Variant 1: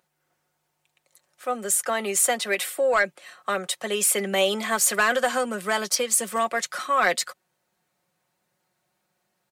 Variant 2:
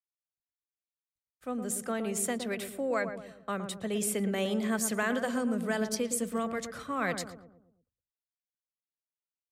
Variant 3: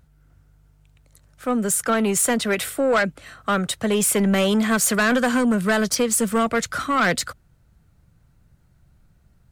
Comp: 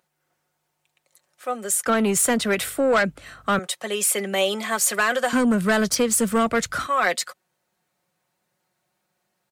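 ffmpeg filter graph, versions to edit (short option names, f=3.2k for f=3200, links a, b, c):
-filter_complex "[2:a]asplit=2[a][b];[0:a]asplit=3[c][d][e];[c]atrim=end=1.862[f];[a]atrim=start=1.858:end=3.592[g];[d]atrim=start=3.588:end=5.332[h];[b]atrim=start=5.328:end=6.872[i];[e]atrim=start=6.868[j];[f][g]acrossfade=d=0.004:c1=hsin:c2=hsin[k];[k][h]acrossfade=d=0.004:c1=hsin:c2=hsin[l];[l][i]acrossfade=d=0.004:c1=hsin:c2=hsin[m];[m][j]acrossfade=d=0.004:c1=hsin:c2=hsin"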